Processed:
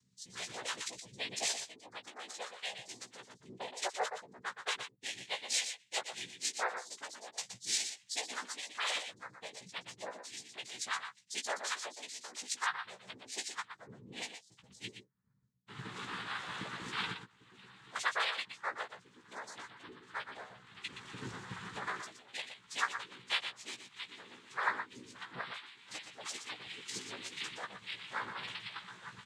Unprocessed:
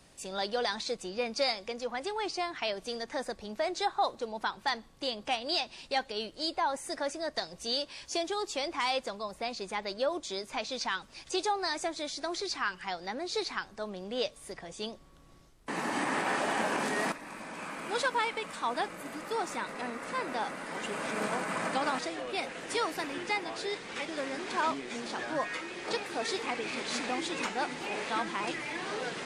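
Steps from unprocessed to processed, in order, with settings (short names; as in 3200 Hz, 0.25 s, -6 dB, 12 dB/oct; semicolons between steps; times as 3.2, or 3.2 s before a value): per-bin expansion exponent 2; EQ curve 200 Hz 0 dB, 350 Hz -19 dB, 1300 Hz +3 dB; upward compressor, threshold -52 dBFS; noise vocoder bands 6; doubler 16 ms -5 dB; echo 0.12 s -8.5 dB; gain -1.5 dB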